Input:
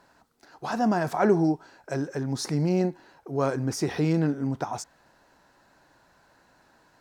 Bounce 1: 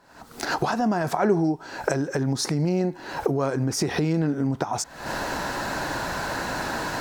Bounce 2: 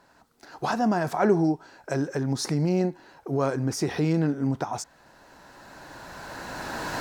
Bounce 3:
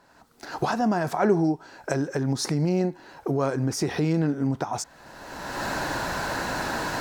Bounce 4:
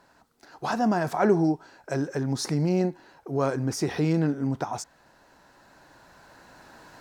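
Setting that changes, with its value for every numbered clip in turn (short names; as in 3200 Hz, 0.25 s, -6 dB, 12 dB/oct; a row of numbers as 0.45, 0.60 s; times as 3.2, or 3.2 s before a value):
recorder AGC, rising by: 79, 13, 32, 5 dB/s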